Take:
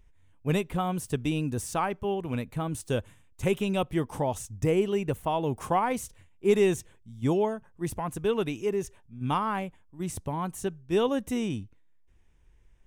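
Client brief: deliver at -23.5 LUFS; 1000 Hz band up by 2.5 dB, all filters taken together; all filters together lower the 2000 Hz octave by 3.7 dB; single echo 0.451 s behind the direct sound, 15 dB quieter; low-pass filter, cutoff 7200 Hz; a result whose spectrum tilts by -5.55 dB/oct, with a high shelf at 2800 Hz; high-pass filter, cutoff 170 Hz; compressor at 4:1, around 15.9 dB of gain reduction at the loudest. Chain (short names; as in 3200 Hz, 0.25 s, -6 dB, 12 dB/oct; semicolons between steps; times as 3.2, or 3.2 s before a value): HPF 170 Hz; LPF 7200 Hz; bell 1000 Hz +4.5 dB; bell 2000 Hz -8 dB; high shelf 2800 Hz +3 dB; compressor 4:1, threshold -38 dBFS; echo 0.451 s -15 dB; gain +17.5 dB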